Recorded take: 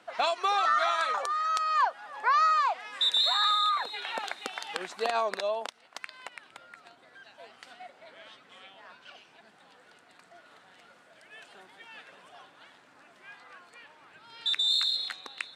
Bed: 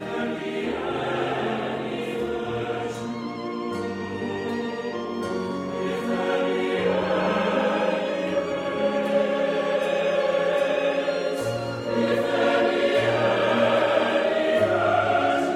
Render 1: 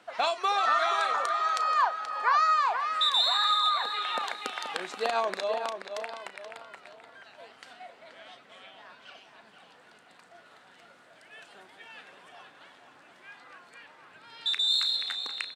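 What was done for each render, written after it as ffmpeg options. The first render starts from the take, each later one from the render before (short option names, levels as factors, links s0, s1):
-filter_complex "[0:a]asplit=2[s0][s1];[s1]adelay=35,volume=0.2[s2];[s0][s2]amix=inputs=2:normalize=0,asplit=2[s3][s4];[s4]adelay=479,lowpass=f=3700:p=1,volume=0.447,asplit=2[s5][s6];[s6]adelay=479,lowpass=f=3700:p=1,volume=0.39,asplit=2[s7][s8];[s8]adelay=479,lowpass=f=3700:p=1,volume=0.39,asplit=2[s9][s10];[s10]adelay=479,lowpass=f=3700:p=1,volume=0.39,asplit=2[s11][s12];[s12]adelay=479,lowpass=f=3700:p=1,volume=0.39[s13];[s5][s7][s9][s11][s13]amix=inputs=5:normalize=0[s14];[s3][s14]amix=inputs=2:normalize=0"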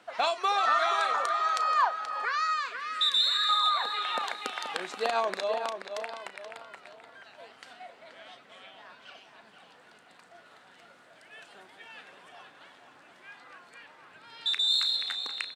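-filter_complex "[0:a]asettb=1/sr,asplit=3[s0][s1][s2];[s0]atrim=end=2.254[s3];[s1]atrim=start=2.25:end=3.49,asetpts=PTS-STARTPTS,afade=t=in:d=0.004:c=qsin,afade=t=out:st=1.236:d=0.004:c=qsin,asuperstop=centerf=820:order=4:qfactor=0.91[s4];[s2]atrim=start=3.486[s5];[s3][s4]acrossfade=d=0.004:c1=hsin:c2=qsin[s6];[s6][s5]acrossfade=d=0.004:c1=qsin:c2=hsin"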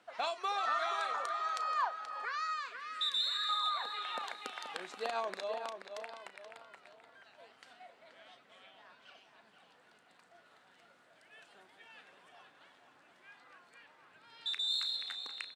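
-af "volume=0.376"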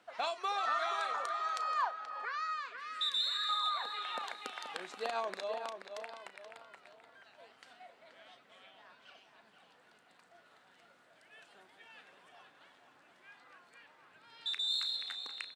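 -filter_complex "[0:a]asettb=1/sr,asplit=3[s0][s1][s2];[s0]atrim=end=1.914[s3];[s1]atrim=start=1.91:end=2.78,asetpts=PTS-STARTPTS,afade=t=in:d=0.004:c=qsin,afade=t=out:st=0.866:d=0.004:c=qsin,lowpass=f=3900:p=1[s4];[s2]atrim=start=2.776[s5];[s3][s4]acrossfade=d=0.004:c1=hsin:c2=qsin[s6];[s6][s5]acrossfade=d=0.004:c1=qsin:c2=hsin"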